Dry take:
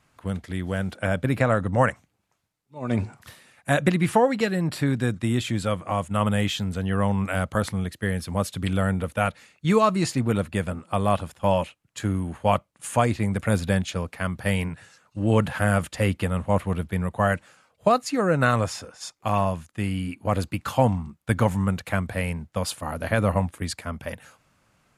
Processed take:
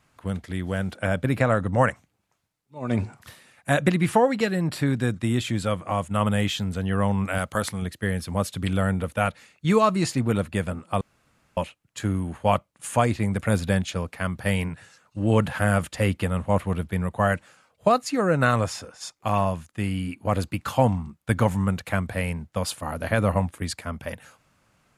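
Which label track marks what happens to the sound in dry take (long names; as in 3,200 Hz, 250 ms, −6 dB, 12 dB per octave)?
7.380000	7.820000	spectral tilt +1.5 dB per octave
11.010000	11.570000	fill with room tone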